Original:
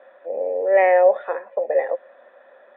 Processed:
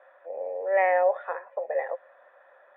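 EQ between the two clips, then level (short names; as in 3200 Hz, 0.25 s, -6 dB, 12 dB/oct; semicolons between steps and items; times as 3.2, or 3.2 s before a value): Chebyshev high-pass 1100 Hz, order 2; air absorption 100 m; tilt -3.5 dB/oct; 0.0 dB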